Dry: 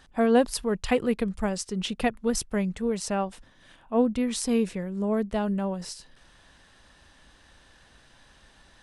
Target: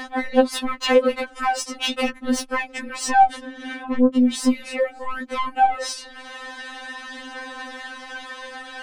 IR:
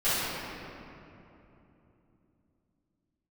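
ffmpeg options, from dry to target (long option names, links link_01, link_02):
-filter_complex "[0:a]asettb=1/sr,asplit=3[link_01][link_02][link_03];[link_01]atrim=end=3.104[link_04];[link_02]atrim=start=3.1:end=4.52,asetpts=PTS-STARTPTS,afade=type=in:duration=0.004:curve=qsin,afade=type=out:start_time=1.416:duration=0.004:curve=qsin,equalizer=frequency=270:width_type=o:width=0.94:gain=14.5[link_05];[link_03]atrim=start=4.516[link_06];[link_04][link_05]acrossfade=duration=0.004:curve1=hsin:curve2=qsin[link_07];[link_07][link_06]acrossfade=duration=0.004:curve1=qsin:curve2=hsin,acompressor=threshold=-23dB:ratio=8,acrossover=split=420|1000[link_08][link_09][link_10];[link_08]alimiter=level_in=6dB:limit=-24dB:level=0:latency=1,volume=-6dB[link_11];[link_11][link_09][link_10]amix=inputs=3:normalize=0,acompressor=mode=upward:threshold=-42dB:ratio=2.5,asplit=2[link_12][link_13];[link_13]highpass=frequency=720:poles=1,volume=30dB,asoftclip=type=tanh:threshold=-4dB[link_14];[link_12][link_14]amix=inputs=2:normalize=0,lowpass=frequency=1600:poles=1,volume=-6dB,flanger=delay=3.6:depth=2.9:regen=53:speed=0.4:shape=triangular,afftfilt=real='re*3.46*eq(mod(b,12),0)':imag='im*3.46*eq(mod(b,12),0)':win_size=2048:overlap=0.75,volume=4dB"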